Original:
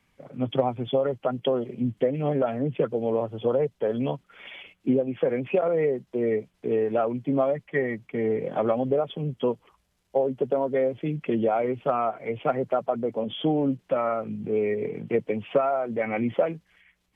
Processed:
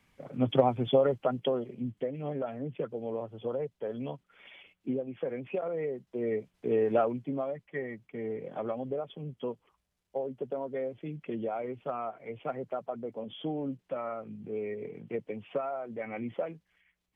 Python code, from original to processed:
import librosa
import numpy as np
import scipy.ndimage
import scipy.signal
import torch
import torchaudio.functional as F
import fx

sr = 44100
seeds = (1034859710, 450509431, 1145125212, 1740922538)

y = fx.gain(x, sr, db=fx.line((1.04, 0.0), (1.98, -10.0), (5.87, -10.0), (6.97, -1.0), (7.38, -10.5)))